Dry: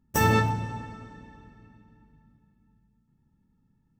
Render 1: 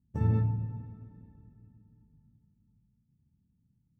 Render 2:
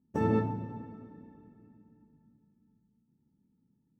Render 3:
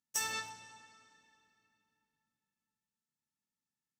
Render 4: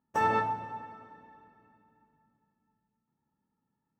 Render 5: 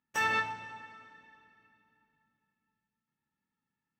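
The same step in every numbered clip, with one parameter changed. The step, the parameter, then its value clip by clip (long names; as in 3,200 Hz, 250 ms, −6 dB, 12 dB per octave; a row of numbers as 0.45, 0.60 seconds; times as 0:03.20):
resonant band-pass, frequency: 100, 290, 6,800, 880, 2,200 Hertz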